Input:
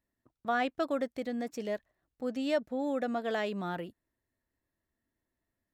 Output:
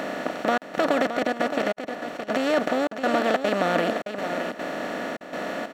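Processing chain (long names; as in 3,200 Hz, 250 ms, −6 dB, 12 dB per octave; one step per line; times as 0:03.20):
compressor on every frequency bin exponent 0.2
gate pattern "xxxxxxx..xxxx." 183 BPM −60 dB
0:01.09–0:02.23: output level in coarse steps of 13 dB
single-tap delay 618 ms −9 dB
level +3 dB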